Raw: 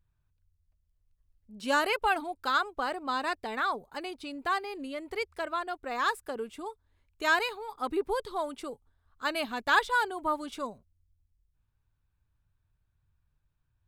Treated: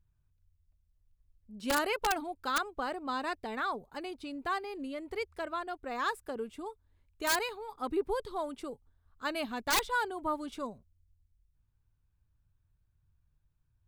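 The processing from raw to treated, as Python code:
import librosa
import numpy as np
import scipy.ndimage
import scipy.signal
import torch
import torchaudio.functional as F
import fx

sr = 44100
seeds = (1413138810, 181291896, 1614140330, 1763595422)

y = fx.low_shelf(x, sr, hz=410.0, db=7.0)
y = (np.mod(10.0 ** (16.0 / 20.0) * y + 1.0, 2.0) - 1.0) / 10.0 ** (16.0 / 20.0)
y = y * librosa.db_to_amplitude(-5.0)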